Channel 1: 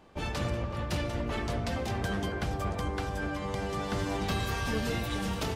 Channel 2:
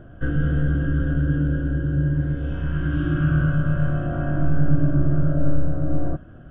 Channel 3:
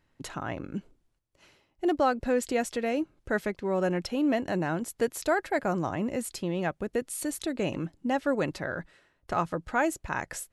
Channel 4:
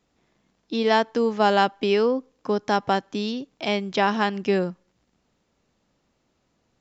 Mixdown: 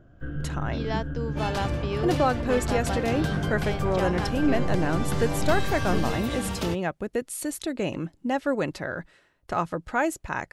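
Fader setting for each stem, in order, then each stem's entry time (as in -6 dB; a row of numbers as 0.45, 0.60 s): +1.5, -10.5, +1.5, -11.5 dB; 1.20, 0.00, 0.20, 0.00 s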